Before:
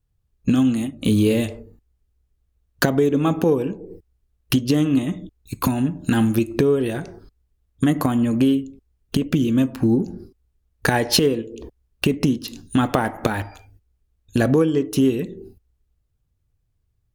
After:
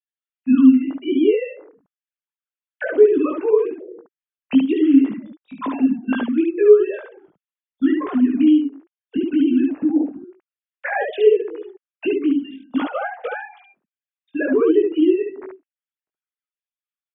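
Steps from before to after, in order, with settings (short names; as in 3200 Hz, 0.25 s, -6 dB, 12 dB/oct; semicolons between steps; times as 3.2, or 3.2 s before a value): sine-wave speech; early reflections 19 ms -3.5 dB, 72 ms -3 dB; gain -1 dB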